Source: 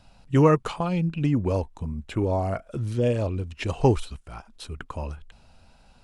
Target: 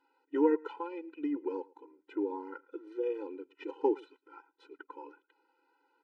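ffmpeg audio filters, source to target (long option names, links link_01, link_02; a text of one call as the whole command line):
ffmpeg -i in.wav -af "lowpass=1300,equalizer=frequency=620:width=0.69:gain=-8.5,aecho=1:1:110:0.0631,afftfilt=real='re*eq(mod(floor(b*sr/1024/260),2),1)':imag='im*eq(mod(floor(b*sr/1024/260),2),1)':win_size=1024:overlap=0.75" out.wav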